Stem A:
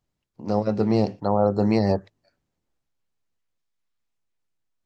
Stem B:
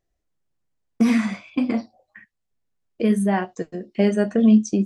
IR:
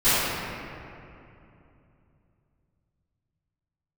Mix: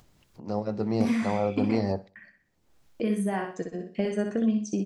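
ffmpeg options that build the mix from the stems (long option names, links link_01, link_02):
-filter_complex "[0:a]volume=-7dB,asplit=2[link_01][link_02];[link_02]volume=-20dB[link_03];[1:a]agate=range=-33dB:threshold=-48dB:ratio=3:detection=peak,acompressor=threshold=-21dB:ratio=3,volume=-4dB,asplit=2[link_04][link_05];[link_05]volume=-5.5dB[link_06];[link_03][link_06]amix=inputs=2:normalize=0,aecho=0:1:62|124|186|248|310:1|0.32|0.102|0.0328|0.0105[link_07];[link_01][link_04][link_07]amix=inputs=3:normalize=0,acompressor=mode=upward:threshold=-40dB:ratio=2.5"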